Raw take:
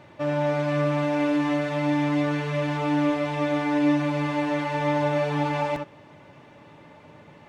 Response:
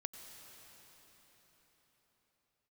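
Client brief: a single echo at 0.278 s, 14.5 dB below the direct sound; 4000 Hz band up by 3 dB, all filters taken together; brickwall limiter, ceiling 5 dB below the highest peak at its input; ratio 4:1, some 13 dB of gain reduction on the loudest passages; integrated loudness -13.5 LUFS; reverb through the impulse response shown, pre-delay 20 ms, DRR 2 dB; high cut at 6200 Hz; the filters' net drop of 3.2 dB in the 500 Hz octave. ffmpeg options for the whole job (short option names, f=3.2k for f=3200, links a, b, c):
-filter_complex "[0:a]lowpass=6.2k,equalizer=f=500:t=o:g=-4,equalizer=f=4k:t=o:g=4.5,acompressor=threshold=-35dB:ratio=4,alimiter=level_in=6dB:limit=-24dB:level=0:latency=1,volume=-6dB,aecho=1:1:278:0.188,asplit=2[a][b];[1:a]atrim=start_sample=2205,adelay=20[c];[b][c]afir=irnorm=-1:irlink=0,volume=0.5dB[d];[a][d]amix=inputs=2:normalize=0,volume=22dB"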